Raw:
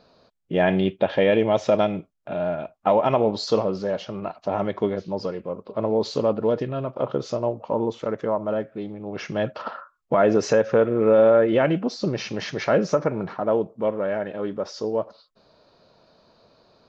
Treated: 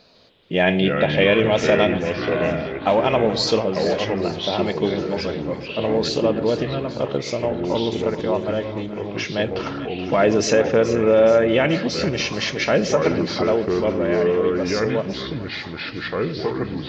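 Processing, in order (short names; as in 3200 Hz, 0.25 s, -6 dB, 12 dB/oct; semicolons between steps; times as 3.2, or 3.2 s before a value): resonant high shelf 1700 Hz +6.5 dB, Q 1.5; echoes that change speed 0.15 s, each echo -4 st, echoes 3, each echo -6 dB; split-band echo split 700 Hz, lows 0.121 s, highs 0.427 s, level -12.5 dB; gain +1.5 dB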